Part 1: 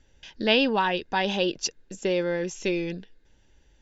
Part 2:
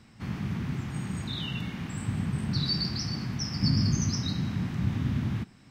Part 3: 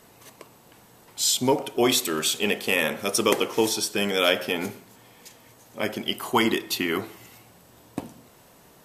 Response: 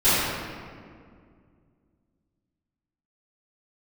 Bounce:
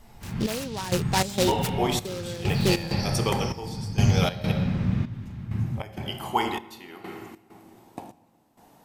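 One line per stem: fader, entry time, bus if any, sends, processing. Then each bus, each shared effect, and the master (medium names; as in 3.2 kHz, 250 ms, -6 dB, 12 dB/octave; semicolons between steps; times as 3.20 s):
+2.0 dB, 0.00 s, no send, tone controls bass +4 dB, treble -8 dB; delay time shaken by noise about 3.8 kHz, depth 0.1 ms
-14.0 dB, 0.00 s, send -5.5 dB, bass shelf 67 Hz +7 dB
-8.0 dB, 0.00 s, muted 4.52–5.11 s, send -24 dB, peaking EQ 800 Hz +13 dB 0.38 oct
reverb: on, RT60 2.1 s, pre-delay 3 ms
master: peaking EQ 280 Hz -4 dB 0.35 oct; trance gate "xxx...xx.x" 98 bpm -12 dB; loudspeaker Doppler distortion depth 0.11 ms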